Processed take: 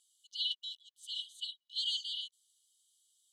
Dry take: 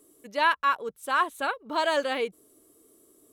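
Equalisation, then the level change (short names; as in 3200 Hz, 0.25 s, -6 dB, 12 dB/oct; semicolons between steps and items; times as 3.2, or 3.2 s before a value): brick-wall FIR high-pass 2900 Hz; air absorption 120 m; notch 5500 Hz, Q 9.2; +6.0 dB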